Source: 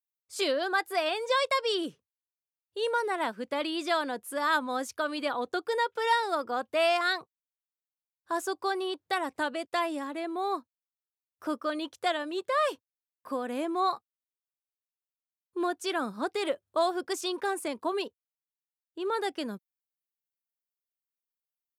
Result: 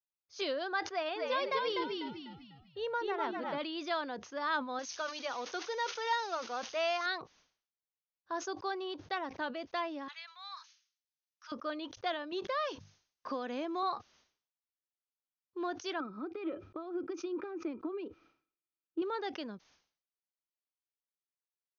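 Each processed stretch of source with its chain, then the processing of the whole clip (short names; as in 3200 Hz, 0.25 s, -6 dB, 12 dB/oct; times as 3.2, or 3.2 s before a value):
0.88–3.58 high shelf 6100 Hz -12 dB + frequency-shifting echo 0.248 s, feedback 38%, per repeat -65 Hz, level -3 dB
4.79–7.06 switching spikes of -26 dBFS + low shelf 260 Hz -6.5 dB + notch 290 Hz, Q 7.1
10.08–11.52 Bessel high-pass 1800 Hz, order 6 + high shelf 2400 Hz +10.5 dB
12.32–13.83 high shelf 5300 Hz +10.5 dB + notches 50/100/150/200 Hz + three-band squash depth 70%
16–19.02 compressor 16:1, threshold -36 dBFS + tape spacing loss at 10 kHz 24 dB + small resonant body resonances 320/1300/2400 Hz, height 17 dB, ringing for 40 ms
whole clip: Chebyshev low-pass 6500 Hz, order 10; sustainer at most 120 dB/s; gain -6.5 dB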